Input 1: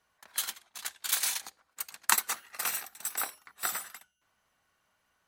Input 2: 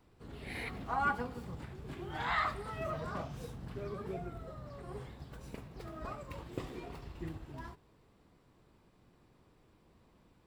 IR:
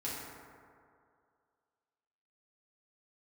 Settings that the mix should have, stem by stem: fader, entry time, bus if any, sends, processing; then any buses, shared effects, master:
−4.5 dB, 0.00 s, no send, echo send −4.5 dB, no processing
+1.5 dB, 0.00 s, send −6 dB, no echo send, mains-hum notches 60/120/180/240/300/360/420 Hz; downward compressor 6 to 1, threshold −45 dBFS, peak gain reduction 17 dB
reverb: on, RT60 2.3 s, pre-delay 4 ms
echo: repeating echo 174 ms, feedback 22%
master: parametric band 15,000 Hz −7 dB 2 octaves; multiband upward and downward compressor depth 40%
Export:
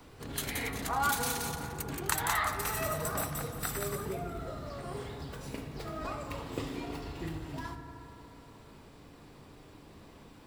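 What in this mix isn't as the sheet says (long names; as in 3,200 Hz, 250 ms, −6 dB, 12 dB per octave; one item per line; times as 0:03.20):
stem 2: missing downward compressor 6 to 1, threshold −45 dBFS, peak gain reduction 17 dB
master: missing parametric band 15,000 Hz −7 dB 2 octaves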